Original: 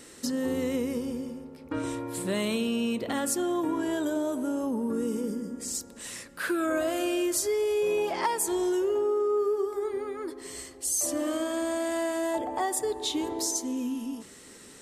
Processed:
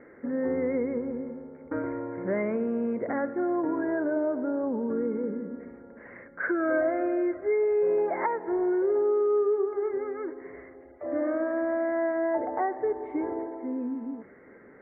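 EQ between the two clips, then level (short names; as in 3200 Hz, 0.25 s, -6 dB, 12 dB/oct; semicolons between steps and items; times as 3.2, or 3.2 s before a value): rippled Chebyshev low-pass 2200 Hz, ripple 6 dB; air absorption 120 m; low shelf 73 Hz -8 dB; +4.5 dB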